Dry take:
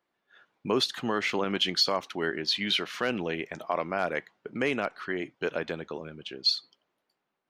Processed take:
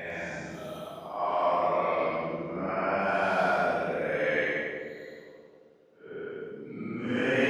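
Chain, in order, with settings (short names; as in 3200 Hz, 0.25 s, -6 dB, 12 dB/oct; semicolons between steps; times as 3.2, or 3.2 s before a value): Paulstretch 6.5×, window 0.10 s, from 3.5; split-band echo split 550 Hz, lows 0.267 s, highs 0.102 s, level -4 dB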